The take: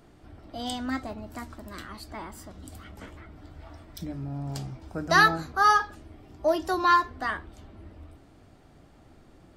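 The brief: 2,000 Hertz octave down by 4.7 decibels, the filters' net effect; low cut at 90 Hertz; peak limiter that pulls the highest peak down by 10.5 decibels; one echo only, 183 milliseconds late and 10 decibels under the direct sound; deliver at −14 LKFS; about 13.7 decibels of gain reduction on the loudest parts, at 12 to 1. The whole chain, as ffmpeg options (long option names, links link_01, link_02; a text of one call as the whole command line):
ffmpeg -i in.wav -af "highpass=90,equalizer=frequency=2000:width_type=o:gain=-6,acompressor=threshold=-31dB:ratio=12,alimiter=level_in=7.5dB:limit=-24dB:level=0:latency=1,volume=-7.5dB,aecho=1:1:183:0.316,volume=28dB" out.wav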